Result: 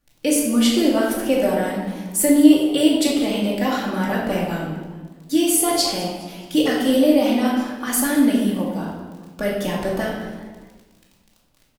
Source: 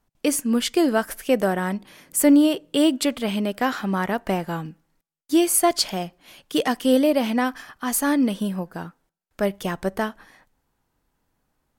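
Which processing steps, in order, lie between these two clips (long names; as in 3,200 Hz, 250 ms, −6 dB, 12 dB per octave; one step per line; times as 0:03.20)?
harmonic and percussive parts rebalanced percussive +5 dB
in parallel at −1 dB: brickwall limiter −11.5 dBFS, peak gain reduction 9 dB
on the sum: surface crackle 22 per second −27 dBFS
auto-filter notch saw up 5.1 Hz 840–2,100 Hz
on a send: echo with shifted repeats 208 ms, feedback 42%, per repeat +100 Hz, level −18.5 dB
on the sum: rectangular room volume 650 cubic metres, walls mixed, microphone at 2.4 metres
level −9.5 dB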